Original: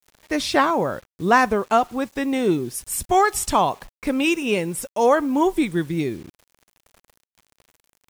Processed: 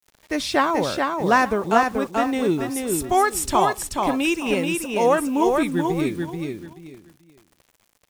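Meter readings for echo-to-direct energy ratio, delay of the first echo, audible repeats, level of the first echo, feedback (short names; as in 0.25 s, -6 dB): -3.5 dB, 0.433 s, 3, -4.0 dB, 24%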